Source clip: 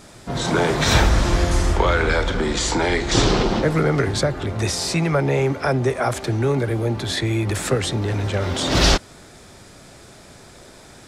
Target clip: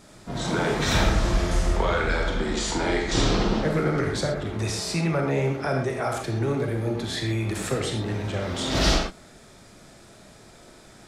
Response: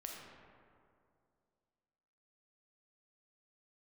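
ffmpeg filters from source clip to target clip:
-filter_complex "[0:a]equalizer=f=200:t=o:w=0.77:g=3[s0];[1:a]atrim=start_sample=2205,atrim=end_sample=6174[s1];[s0][s1]afir=irnorm=-1:irlink=0,volume=0.841"

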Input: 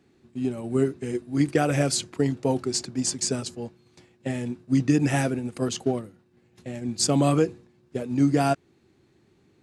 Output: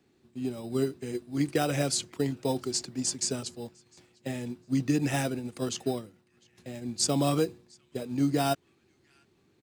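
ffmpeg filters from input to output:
-filter_complex "[0:a]lowshelf=f=450:g=-3.5,acrossover=split=390|1600[s0][s1][s2];[s1]acrusher=samples=10:mix=1:aa=0.000001[s3];[s2]asplit=2[s4][s5];[s5]adelay=703,lowpass=f=2900:p=1,volume=0.0794,asplit=2[s6][s7];[s7]adelay=703,lowpass=f=2900:p=1,volume=0.51,asplit=2[s8][s9];[s9]adelay=703,lowpass=f=2900:p=1,volume=0.51,asplit=2[s10][s11];[s11]adelay=703,lowpass=f=2900:p=1,volume=0.51[s12];[s4][s6][s8][s10][s12]amix=inputs=5:normalize=0[s13];[s0][s3][s13]amix=inputs=3:normalize=0,volume=0.708"

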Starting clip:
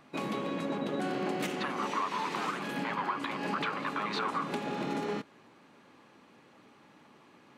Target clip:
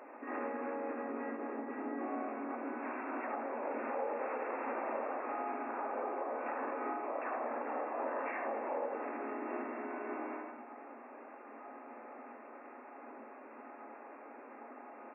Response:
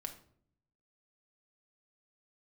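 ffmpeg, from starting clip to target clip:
-filter_complex "[0:a]acompressor=threshold=0.01:ratio=5,asoftclip=type=hard:threshold=0.0168,asuperstop=centerf=930:order=20:qfactor=6.8,equalizer=f=1600:t=o:w=0.31:g=7.5,asplit=2[s0][s1];[s1]adelay=37,volume=0.631[s2];[s0][s2]amix=inputs=2:normalize=0,aecho=1:1:107|214:0.2|0.0359,asplit=2[s3][s4];[1:a]atrim=start_sample=2205,asetrate=38367,aresample=44100[s5];[s4][s5]afir=irnorm=-1:irlink=0,volume=1.88[s6];[s3][s6]amix=inputs=2:normalize=0,alimiter=level_in=1.58:limit=0.0631:level=0:latency=1:release=56,volume=0.631,asplit=3[s7][s8][s9];[s8]asetrate=37084,aresample=44100,atempo=1.18921,volume=0.708[s10];[s9]asetrate=66075,aresample=44100,atempo=0.66742,volume=0.631[s11];[s7][s10][s11]amix=inputs=3:normalize=0,afftfilt=real='re*between(b*sr/4096,450,5500)':imag='im*between(b*sr/4096,450,5500)':win_size=4096:overlap=0.75,asetrate=22050,aresample=44100,volume=0.708"

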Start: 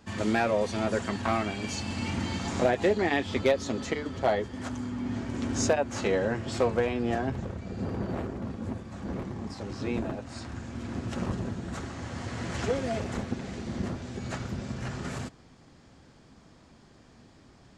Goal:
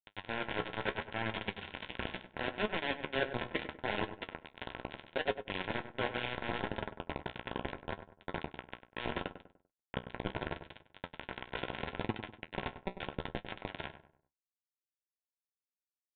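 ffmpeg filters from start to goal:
-filter_complex "[0:a]equalizer=f=200:t=o:w=0.73:g=-4,aecho=1:1:5.3:0.37,adynamicequalizer=threshold=0.00891:dfrequency=380:dqfactor=3.1:tfrequency=380:tqfactor=3.1:attack=5:release=100:ratio=0.375:range=1.5:mode=boostabove:tftype=bell,areverse,acompressor=threshold=0.02:ratio=8,areverse,acrusher=bits=4:mix=0:aa=0.000001,atempo=1.1,flanger=delay=9.2:depth=7.4:regen=51:speed=0.74:shape=sinusoidal,asplit=2[s0][s1];[s1]adelay=98,lowpass=f=1500:p=1,volume=0.316,asplit=2[s2][s3];[s3]adelay=98,lowpass=f=1500:p=1,volume=0.4,asplit=2[s4][s5];[s5]adelay=98,lowpass=f=1500:p=1,volume=0.4,asplit=2[s6][s7];[s7]adelay=98,lowpass=f=1500:p=1,volume=0.4[s8];[s2][s4][s6][s8]amix=inputs=4:normalize=0[s9];[s0][s9]amix=inputs=2:normalize=0,aresample=8000,aresample=44100,asuperstop=centerf=1200:order=12:qfactor=6.1,volume=2.11"

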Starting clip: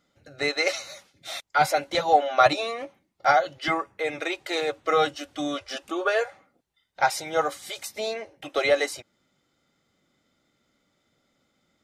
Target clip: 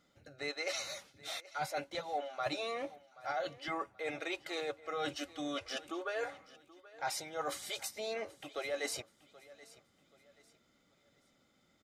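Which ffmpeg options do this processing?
-af "areverse,acompressor=threshold=0.0178:ratio=5,areverse,aecho=1:1:779|1558|2337:0.106|0.036|0.0122,volume=0.841"

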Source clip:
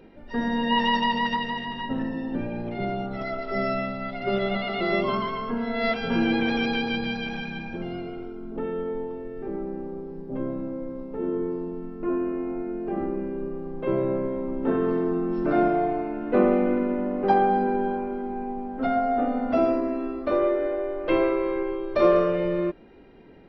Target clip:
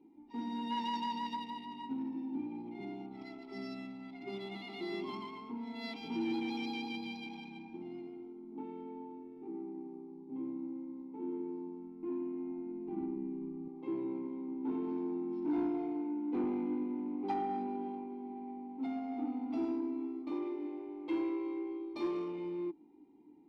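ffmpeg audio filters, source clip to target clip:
-filter_complex "[0:a]aexciter=amount=12.7:drive=5.9:freq=3800,adynamicsmooth=sensitivity=5.5:basefreq=1600,asplit=3[s0][s1][s2];[s0]bandpass=f=300:t=q:w=8,volume=1[s3];[s1]bandpass=f=870:t=q:w=8,volume=0.501[s4];[s2]bandpass=f=2240:t=q:w=8,volume=0.355[s5];[s3][s4][s5]amix=inputs=3:normalize=0,asoftclip=type=tanh:threshold=0.0501,asettb=1/sr,asplit=3[s6][s7][s8];[s6]atrim=end=11.644[s9];[s7]atrim=start=11.64:end=13.68,asetpts=PTS-STARTPTS,afade=t=in:d=0.004:c=qsin,afade=t=out:st=2.036:d=0.004:c=qsin,asubboost=boost=7.5:cutoff=210[s10];[s8]atrim=start=13.676[s11];[s9][s10]acrossfade=d=0.004:c1=hsin:c2=qsin[s12];[s12][s11]acrossfade=d=0.004:c1=qsin:c2=hsin,volume=0.891"

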